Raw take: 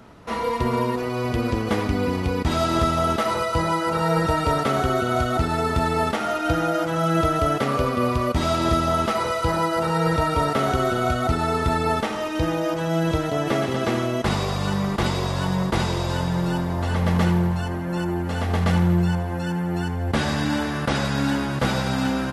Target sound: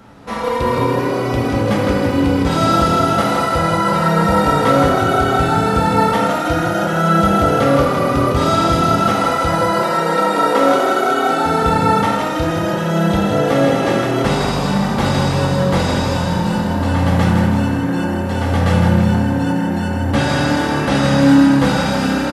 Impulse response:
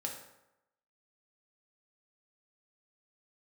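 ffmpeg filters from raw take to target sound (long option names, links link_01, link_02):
-filter_complex "[0:a]asettb=1/sr,asplit=3[link_01][link_02][link_03];[link_01]atrim=end=9.624[link_04];[link_02]atrim=start=9.62:end=11.46,asetpts=PTS-STARTPTS,afade=type=in:duration=0.004:curve=qsin,afade=type=out:start_time=1.836:duration=0.004:curve=qsin,highpass=frequency=220:width=0.5412,highpass=frequency=220:width=1.3066[link_05];[link_03]atrim=start=11.456[link_06];[link_04][link_05]acrossfade=duration=0.004:curve1=hsin:curve2=qsin[link_07];[link_07][link_06]acrossfade=duration=0.004:curve1=qsin:curve2=hsin,asplit=8[link_08][link_09][link_10][link_11][link_12][link_13][link_14][link_15];[link_09]adelay=160,afreqshift=34,volume=-5dB[link_16];[link_10]adelay=320,afreqshift=68,volume=-10.5dB[link_17];[link_11]adelay=480,afreqshift=102,volume=-16dB[link_18];[link_12]adelay=640,afreqshift=136,volume=-21.5dB[link_19];[link_13]adelay=800,afreqshift=170,volume=-27.1dB[link_20];[link_14]adelay=960,afreqshift=204,volume=-32.6dB[link_21];[link_15]adelay=1120,afreqshift=238,volume=-38.1dB[link_22];[link_08][link_16][link_17][link_18][link_19][link_20][link_21][link_22]amix=inputs=8:normalize=0[link_23];[1:a]atrim=start_sample=2205[link_24];[link_23][link_24]afir=irnorm=-1:irlink=0,volume=5dB"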